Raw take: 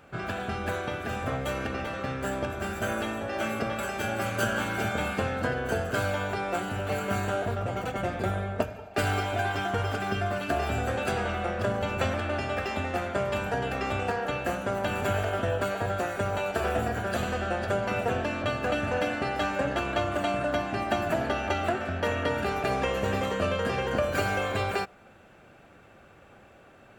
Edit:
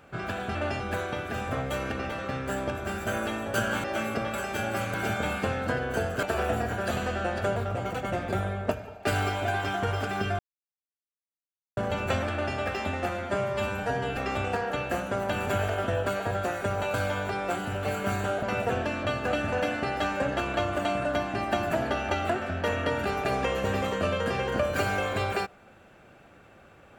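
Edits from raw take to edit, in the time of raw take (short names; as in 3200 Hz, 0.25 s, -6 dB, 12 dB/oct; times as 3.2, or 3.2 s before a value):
4.39–4.69 move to 3.29
5.98–7.47 swap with 16.49–17.82
10.3–11.68 mute
12.23–12.48 copy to 0.55
13–13.72 stretch 1.5×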